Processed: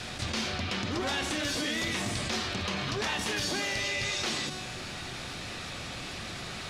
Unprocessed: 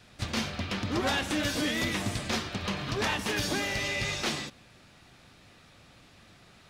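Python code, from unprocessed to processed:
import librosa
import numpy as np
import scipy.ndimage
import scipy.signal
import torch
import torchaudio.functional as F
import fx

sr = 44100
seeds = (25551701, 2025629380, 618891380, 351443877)

y = scipy.signal.sosfilt(scipy.signal.bessel(2, 8000.0, 'lowpass', norm='mag', fs=sr, output='sos'), x)
y = fx.high_shelf(y, sr, hz=3800.0, db=6.5)
y = fx.hum_notches(y, sr, base_hz=50, count=6)
y = fx.comb_fb(y, sr, f0_hz=370.0, decay_s=0.87, harmonics='all', damping=0.0, mix_pct=70)
y = fx.env_flatten(y, sr, amount_pct=70)
y = F.gain(torch.from_numpy(y), 5.0).numpy()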